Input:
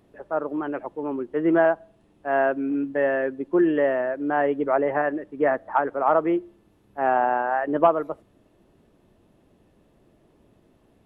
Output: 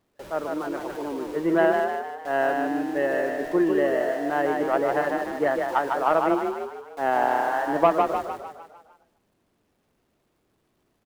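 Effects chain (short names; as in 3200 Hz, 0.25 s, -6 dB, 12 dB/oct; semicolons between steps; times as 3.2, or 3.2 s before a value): zero-crossing step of -26.5 dBFS; gate with hold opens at -28 dBFS; power-law curve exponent 1.4; frequency-shifting echo 0.151 s, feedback 51%, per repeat +30 Hz, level -4 dB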